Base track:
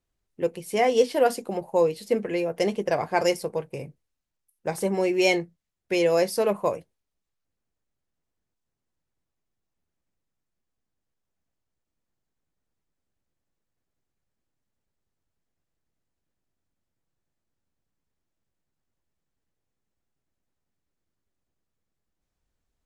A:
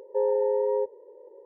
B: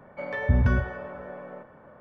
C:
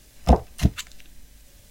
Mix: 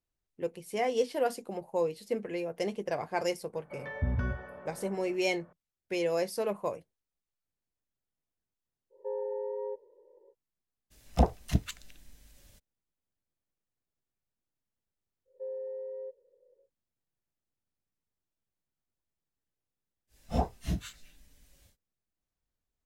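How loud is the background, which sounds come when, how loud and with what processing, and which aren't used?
base track -8.5 dB
3.53 s: add B -9.5 dB
8.90 s: add A -11 dB, fades 0.05 s
10.90 s: add C -7.5 dB, fades 0.02 s
15.25 s: add A -12 dB, fades 0.10 s + cascade formant filter e
20.07 s: add C -11 dB, fades 0.10 s + phase randomisation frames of 100 ms

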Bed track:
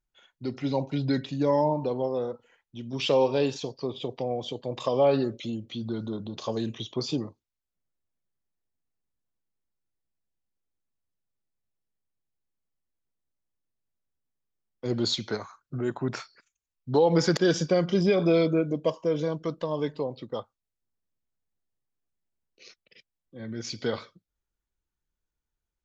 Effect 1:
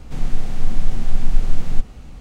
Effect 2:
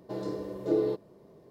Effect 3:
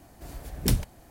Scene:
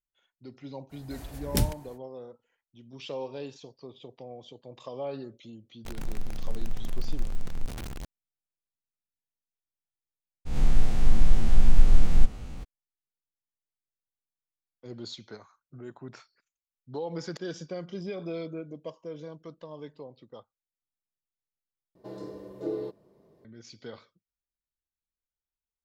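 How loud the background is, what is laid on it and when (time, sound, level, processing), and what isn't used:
bed track -13.5 dB
0.89 s: add 3 -1.5 dB, fades 0.05 s
5.85 s: add 1 -14.5 dB + jump at every zero crossing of -17 dBFS
10.45 s: add 1 -3 dB, fades 0.02 s + reverse spectral sustain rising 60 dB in 0.69 s
21.95 s: replace with 2 -6 dB

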